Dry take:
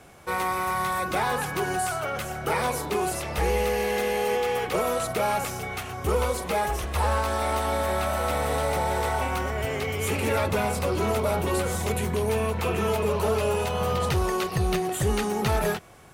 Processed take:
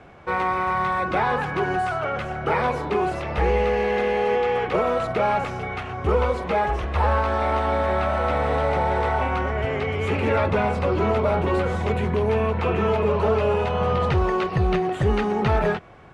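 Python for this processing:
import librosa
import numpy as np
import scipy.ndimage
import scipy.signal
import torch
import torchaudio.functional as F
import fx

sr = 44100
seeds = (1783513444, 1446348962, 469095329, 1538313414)

y = scipy.signal.sosfilt(scipy.signal.butter(2, 2500.0, 'lowpass', fs=sr, output='sos'), x)
y = y * 10.0 ** (4.0 / 20.0)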